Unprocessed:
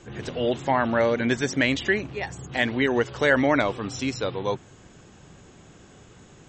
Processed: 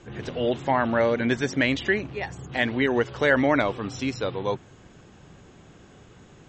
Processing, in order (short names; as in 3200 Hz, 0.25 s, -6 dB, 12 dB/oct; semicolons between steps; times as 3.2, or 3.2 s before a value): air absorption 71 m